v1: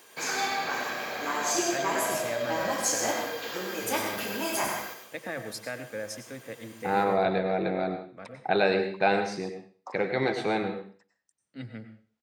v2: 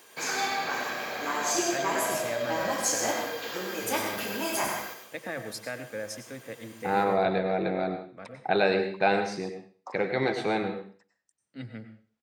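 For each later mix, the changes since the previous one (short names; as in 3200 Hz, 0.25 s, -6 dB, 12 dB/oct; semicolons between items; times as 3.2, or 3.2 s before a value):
none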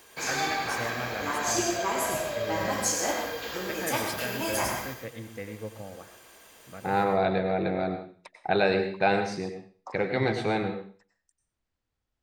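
first voice: entry -1.45 s; master: remove HPF 160 Hz 12 dB/oct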